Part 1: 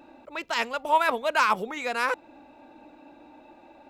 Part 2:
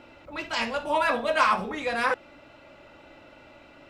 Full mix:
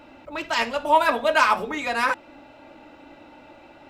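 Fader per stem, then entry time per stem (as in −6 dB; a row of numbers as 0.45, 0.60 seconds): +1.5, −0.5 decibels; 0.00, 0.00 seconds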